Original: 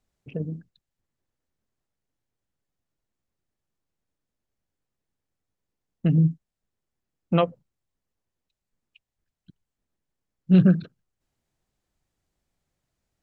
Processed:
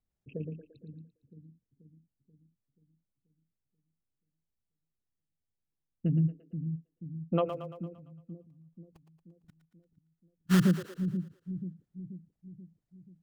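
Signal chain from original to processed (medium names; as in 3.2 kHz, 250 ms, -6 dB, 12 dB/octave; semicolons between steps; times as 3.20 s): resonances exaggerated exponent 1.5; 7.49–10.60 s: sample-rate reducer 1.6 kHz, jitter 20%; two-band feedback delay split 330 Hz, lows 483 ms, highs 114 ms, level -8.5 dB; trim -7.5 dB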